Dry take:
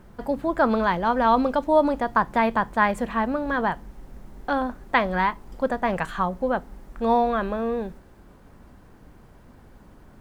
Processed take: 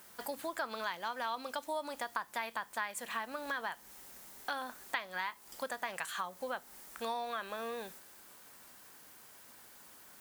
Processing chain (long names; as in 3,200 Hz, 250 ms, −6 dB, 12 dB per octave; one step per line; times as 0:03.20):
first difference
downward compressor 4 to 1, threshold −48 dBFS, peak gain reduction 16.5 dB
level +12 dB